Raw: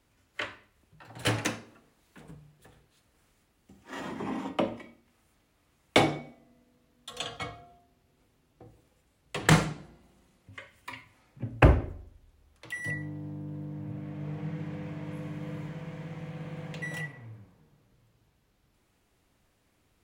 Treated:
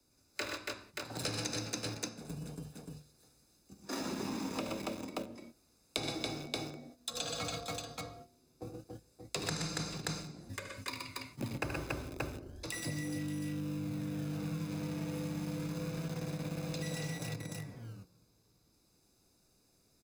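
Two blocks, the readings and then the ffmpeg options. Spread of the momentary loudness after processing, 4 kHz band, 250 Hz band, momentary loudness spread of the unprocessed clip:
11 LU, −2.5 dB, −4.0 dB, 22 LU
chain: -filter_complex "[0:a]agate=range=-15dB:threshold=-51dB:ratio=16:detection=peak,highshelf=frequency=3800:width_type=q:width=3:gain=6.5,aecho=1:1:74|118|124|281|579:0.376|0.251|0.501|0.596|0.355,asplit=2[link_01][link_02];[link_02]acrusher=bits=5:mix=0:aa=0.000001,volume=-7.5dB[link_03];[link_01][link_03]amix=inputs=2:normalize=0,acrossover=split=110|1300|6600[link_04][link_05][link_06][link_07];[link_04]acompressor=threshold=-41dB:ratio=4[link_08];[link_05]acompressor=threshold=-35dB:ratio=4[link_09];[link_06]acompressor=threshold=-30dB:ratio=4[link_10];[link_07]acompressor=threshold=-48dB:ratio=4[link_11];[link_08][link_09][link_10][link_11]amix=inputs=4:normalize=0,acrossover=split=180|1500[link_12][link_13][link_14];[link_12]acrusher=samples=29:mix=1:aa=0.000001:lfo=1:lforange=29:lforate=0.28[link_15];[link_13]tiltshelf=frequency=870:gain=7[link_16];[link_14]aecho=1:1:0.8:0.67[link_17];[link_15][link_16][link_17]amix=inputs=3:normalize=0,acompressor=threshold=-48dB:ratio=3,volume=7.5dB"

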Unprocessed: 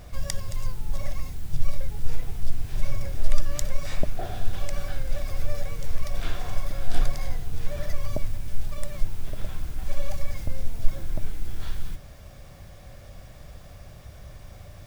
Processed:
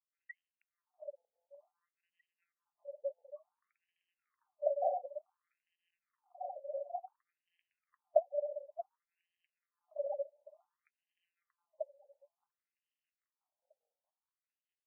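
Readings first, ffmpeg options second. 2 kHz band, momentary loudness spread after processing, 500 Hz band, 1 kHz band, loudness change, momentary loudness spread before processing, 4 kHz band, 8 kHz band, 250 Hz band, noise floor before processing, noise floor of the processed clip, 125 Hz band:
below −20 dB, 21 LU, +1.5 dB, −2.0 dB, −4.5 dB, 14 LU, below −40 dB, can't be measured, below −40 dB, −45 dBFS, below −85 dBFS, below −40 dB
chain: -filter_complex "[0:a]aemphasis=mode=reproduction:type=75kf,afftfilt=real='re*gte(hypot(re,im),0.0631)':imag='im*gte(hypot(re,im),0.0631)':win_size=1024:overlap=0.75,bandreject=frequency=2300:width=6.4,dynaudnorm=framelen=440:gausssize=9:maxgain=15dB,alimiter=limit=-12dB:level=0:latency=1:release=287,tremolo=f=4.9:d=0.58,flanger=delay=3.8:depth=3.9:regen=-55:speed=1.9:shape=triangular,aeval=exprs='val(0)+0.00447*(sin(2*PI*50*n/s)+sin(2*PI*2*50*n/s)/2+sin(2*PI*3*50*n/s)/3+sin(2*PI*4*50*n/s)/4+sin(2*PI*5*50*n/s)/5)':channel_layout=same,aexciter=amount=5.4:drive=8.6:freq=2300,highpass=280,lowpass=5100,asplit=2[link_01][link_02];[link_02]aecho=0:1:633|1266|1899|2532:0.596|0.173|0.0501|0.0145[link_03];[link_01][link_03]amix=inputs=2:normalize=0,afftfilt=real='re*between(b*sr/1024,620*pow(2300/620,0.5+0.5*sin(2*PI*0.56*pts/sr))/1.41,620*pow(2300/620,0.5+0.5*sin(2*PI*0.56*pts/sr))*1.41)':imag='im*between(b*sr/1024,620*pow(2300/620,0.5+0.5*sin(2*PI*0.56*pts/sr))/1.41,620*pow(2300/620,0.5+0.5*sin(2*PI*0.56*pts/sr))*1.41)':win_size=1024:overlap=0.75,volume=14dB"

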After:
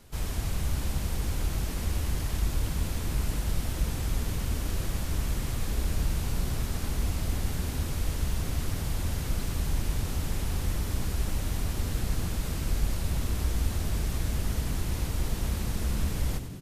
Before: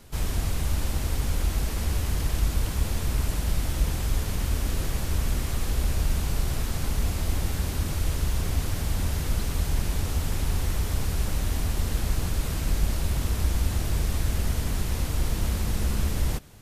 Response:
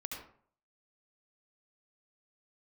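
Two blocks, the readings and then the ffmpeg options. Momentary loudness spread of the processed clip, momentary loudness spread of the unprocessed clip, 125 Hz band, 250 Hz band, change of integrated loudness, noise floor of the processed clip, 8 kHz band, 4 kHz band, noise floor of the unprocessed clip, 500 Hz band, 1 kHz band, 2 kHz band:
2 LU, 2 LU, −3.0 dB, −2.0 dB, −3.0 dB, −33 dBFS, −3.5 dB, −3.5 dB, −30 dBFS, −3.0 dB, −3.5 dB, −3.5 dB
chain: -filter_complex "[0:a]asplit=9[link_01][link_02][link_03][link_04][link_05][link_06][link_07][link_08][link_09];[link_02]adelay=97,afreqshift=-70,volume=-10dB[link_10];[link_03]adelay=194,afreqshift=-140,volume=-14dB[link_11];[link_04]adelay=291,afreqshift=-210,volume=-18dB[link_12];[link_05]adelay=388,afreqshift=-280,volume=-22dB[link_13];[link_06]adelay=485,afreqshift=-350,volume=-26.1dB[link_14];[link_07]adelay=582,afreqshift=-420,volume=-30.1dB[link_15];[link_08]adelay=679,afreqshift=-490,volume=-34.1dB[link_16];[link_09]adelay=776,afreqshift=-560,volume=-38.1dB[link_17];[link_01][link_10][link_11][link_12][link_13][link_14][link_15][link_16][link_17]amix=inputs=9:normalize=0,volume=-4dB"

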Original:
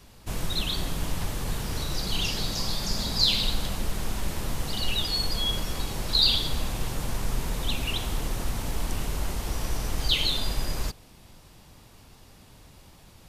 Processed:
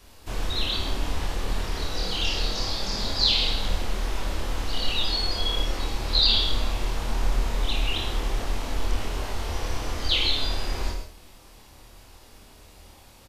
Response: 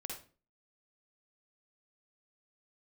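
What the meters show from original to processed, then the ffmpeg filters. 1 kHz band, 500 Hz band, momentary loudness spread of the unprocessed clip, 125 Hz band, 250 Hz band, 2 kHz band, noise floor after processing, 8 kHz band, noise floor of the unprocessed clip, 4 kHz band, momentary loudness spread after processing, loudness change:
+3.0 dB, +3.0 dB, 11 LU, 0.0 dB, −1.0 dB, +3.0 dB, −50 dBFS, −3.5 dB, −52 dBFS, +1.5 dB, 11 LU, +1.5 dB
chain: -filter_complex "[0:a]equalizer=frequency=150:width_type=o:width=0.74:gain=-13,asplit=2[link_01][link_02];[link_02]adelay=26,volume=-3dB[link_03];[link_01][link_03]amix=inputs=2:normalize=0,asplit=2[link_04][link_05];[1:a]atrim=start_sample=2205,adelay=54[link_06];[link_05][link_06]afir=irnorm=-1:irlink=0,volume=-2.5dB[link_07];[link_04][link_07]amix=inputs=2:normalize=0,acrossover=split=6000[link_08][link_09];[link_09]acompressor=threshold=-51dB:ratio=4:attack=1:release=60[link_10];[link_08][link_10]amix=inputs=2:normalize=0"

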